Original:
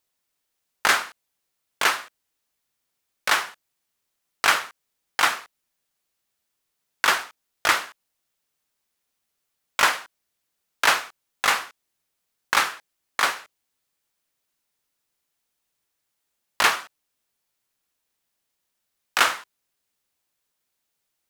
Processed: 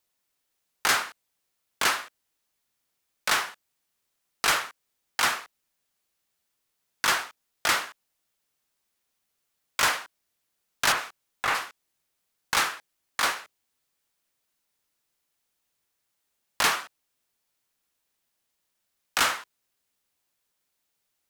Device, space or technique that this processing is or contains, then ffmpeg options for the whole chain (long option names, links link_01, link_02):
one-band saturation: -filter_complex "[0:a]acrossover=split=300|4000[link_01][link_02][link_03];[link_02]asoftclip=type=tanh:threshold=-19dB[link_04];[link_01][link_04][link_03]amix=inputs=3:normalize=0,asettb=1/sr,asplit=3[link_05][link_06][link_07];[link_05]atrim=end=10.924[link_08];[link_06]atrim=start=10.92:end=11.55,asetpts=PTS-STARTPTS,afade=type=in:duration=0.004:curve=qsin,afade=type=out:start_time=0.626:duration=0.004:curve=qsin,acrossover=split=2700[link_09][link_10];[link_10]acompressor=threshold=-36dB:ratio=4:attack=1:release=60[link_11];[link_09][link_11]amix=inputs=2:normalize=0[link_12];[link_07]atrim=start=11.546[link_13];[link_08][link_12]acrossfade=duration=0.004:curve1=hsin:curve2=qsin[link_14];[link_14][link_13]acrossfade=duration=0.004:curve1=qsin:curve2=hsin"